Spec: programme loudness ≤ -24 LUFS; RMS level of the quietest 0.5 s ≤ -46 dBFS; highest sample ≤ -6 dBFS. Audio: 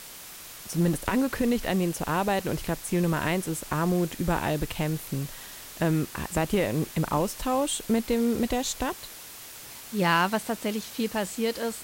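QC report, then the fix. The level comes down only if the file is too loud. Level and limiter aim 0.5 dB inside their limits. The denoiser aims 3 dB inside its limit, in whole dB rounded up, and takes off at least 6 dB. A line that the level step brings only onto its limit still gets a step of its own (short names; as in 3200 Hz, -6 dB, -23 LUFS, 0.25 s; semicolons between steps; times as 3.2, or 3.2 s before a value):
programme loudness -27.5 LUFS: OK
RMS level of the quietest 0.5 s -44 dBFS: fail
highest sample -10.0 dBFS: OK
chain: denoiser 6 dB, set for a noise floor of -44 dBFS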